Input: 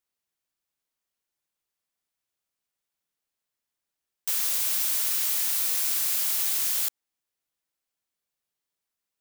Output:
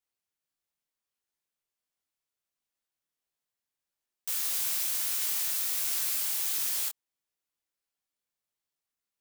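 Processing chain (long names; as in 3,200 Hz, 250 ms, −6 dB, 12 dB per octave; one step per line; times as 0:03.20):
micro pitch shift up and down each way 52 cents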